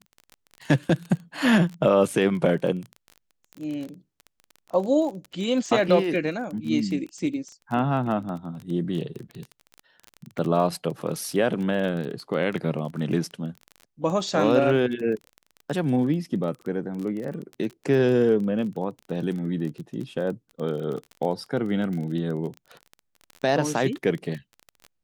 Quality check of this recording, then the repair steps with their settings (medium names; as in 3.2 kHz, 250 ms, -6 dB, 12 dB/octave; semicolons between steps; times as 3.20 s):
crackle 23 per s -31 dBFS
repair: de-click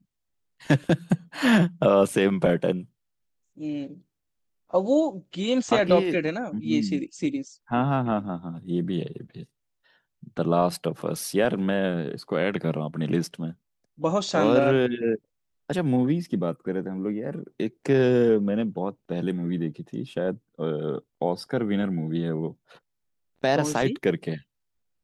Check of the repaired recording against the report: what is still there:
nothing left